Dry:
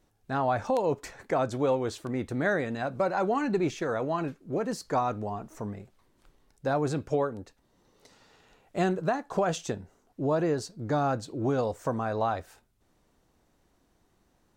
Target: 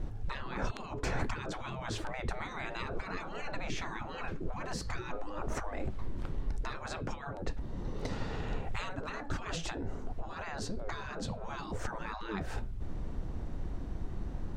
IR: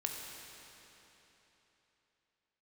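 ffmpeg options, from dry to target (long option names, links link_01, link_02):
-af "acompressor=threshold=-40dB:ratio=4,afftfilt=real='re*lt(hypot(re,im),0.01)':imag='im*lt(hypot(re,im),0.01)':win_size=1024:overlap=0.75,aemphasis=mode=reproduction:type=riaa,volume=18dB"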